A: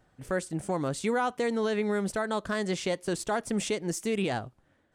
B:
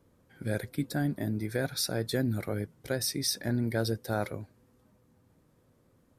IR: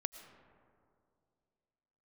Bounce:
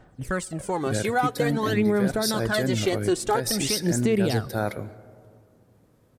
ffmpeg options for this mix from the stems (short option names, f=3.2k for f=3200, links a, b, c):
-filter_complex "[0:a]aphaser=in_gain=1:out_gain=1:delay=2.8:decay=0.67:speed=0.49:type=sinusoidal,volume=2dB,asplit=2[a][b];[b]volume=-16.5dB[c];[1:a]adelay=450,volume=0.5dB,asplit=2[d][e];[e]volume=-4dB[f];[2:a]atrim=start_sample=2205[g];[c][f]amix=inputs=2:normalize=0[h];[h][g]afir=irnorm=-1:irlink=0[i];[a][d][i]amix=inputs=3:normalize=0,alimiter=limit=-13dB:level=0:latency=1:release=126"